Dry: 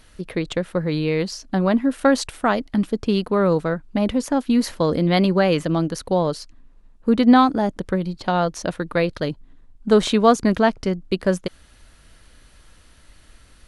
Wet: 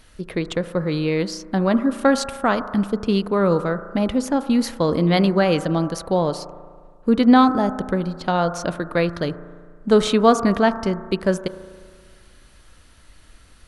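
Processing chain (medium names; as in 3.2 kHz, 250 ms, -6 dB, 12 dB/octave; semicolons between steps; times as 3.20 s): on a send: resonant high shelf 2 kHz -14 dB, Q 3 + reverberation RT60 1.7 s, pre-delay 35 ms, DRR 10.5 dB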